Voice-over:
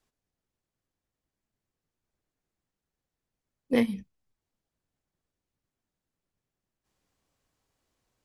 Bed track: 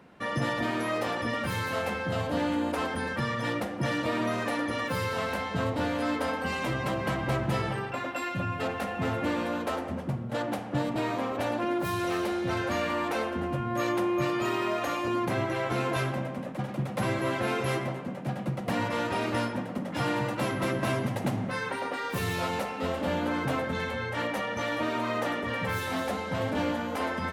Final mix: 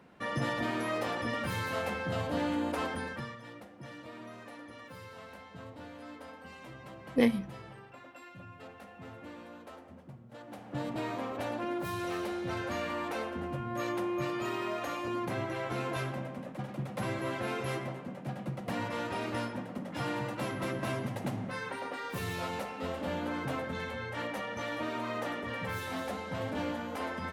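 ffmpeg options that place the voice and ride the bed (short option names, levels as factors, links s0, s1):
-filter_complex "[0:a]adelay=3450,volume=0.891[s0];[1:a]volume=2.66,afade=t=out:st=2.88:d=0.52:silence=0.188365,afade=t=in:st=10.46:d=0.42:silence=0.251189[s1];[s0][s1]amix=inputs=2:normalize=0"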